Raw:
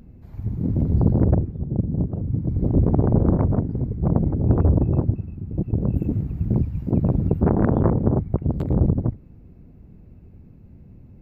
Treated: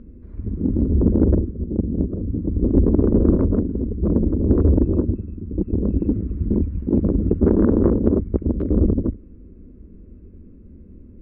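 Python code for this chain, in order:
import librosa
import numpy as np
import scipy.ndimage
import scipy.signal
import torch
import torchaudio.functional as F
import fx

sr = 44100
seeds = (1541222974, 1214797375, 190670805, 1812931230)

p1 = scipy.signal.sosfilt(scipy.signal.butter(2, 1200.0, 'lowpass', fs=sr, output='sos'), x)
p2 = fx.fixed_phaser(p1, sr, hz=320.0, stages=4)
p3 = 10.0 ** (-20.5 / 20.0) * np.tanh(p2 / 10.0 ** (-20.5 / 20.0))
p4 = p2 + (p3 * librosa.db_to_amplitude(-10.5))
p5 = fx.doppler_dist(p4, sr, depth_ms=0.16)
y = p5 * librosa.db_to_amplitude(5.0)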